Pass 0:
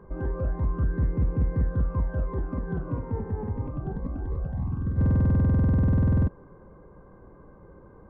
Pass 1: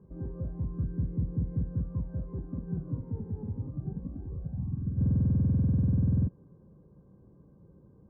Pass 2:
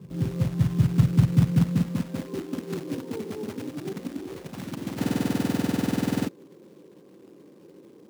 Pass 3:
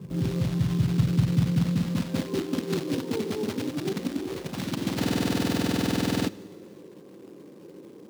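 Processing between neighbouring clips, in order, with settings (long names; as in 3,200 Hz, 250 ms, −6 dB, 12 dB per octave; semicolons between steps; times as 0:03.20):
resonant band-pass 150 Hz, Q 1.2; level −1 dB
floating-point word with a short mantissa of 2 bits; high-pass filter sweep 130 Hz → 330 Hz, 0:01.33–0:02.49; level +7.5 dB
dynamic equaliser 4,000 Hz, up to +6 dB, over −54 dBFS, Q 1; in parallel at +0.5 dB: compressor whose output falls as the input rises −29 dBFS, ratio −1; on the sum: four-comb reverb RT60 1.8 s, combs from 29 ms, DRR 19 dB; level −4.5 dB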